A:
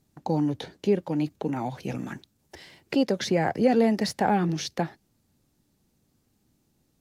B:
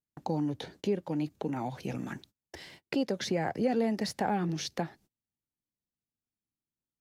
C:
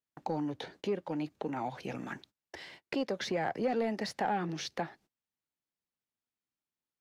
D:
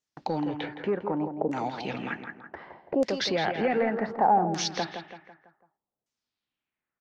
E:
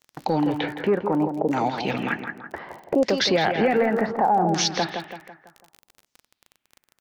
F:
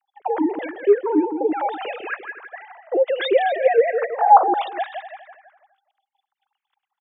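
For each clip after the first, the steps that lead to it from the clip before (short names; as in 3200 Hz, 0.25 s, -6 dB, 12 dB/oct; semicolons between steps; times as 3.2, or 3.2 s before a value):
gate -52 dBFS, range -29 dB; compressor 1.5:1, threshold -38 dBFS, peak gain reduction 8 dB
overdrive pedal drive 12 dB, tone 2500 Hz, clips at -17 dBFS; gain -3.5 dB
feedback echo 0.166 s, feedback 43%, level -8.5 dB; LFO low-pass saw down 0.66 Hz 610–6800 Hz; gain +4.5 dB
limiter -19.5 dBFS, peak gain reduction 7.5 dB; crackle 30/s -39 dBFS; gain +7.5 dB
sine-wave speech; echo 0.247 s -14.5 dB; gain +3 dB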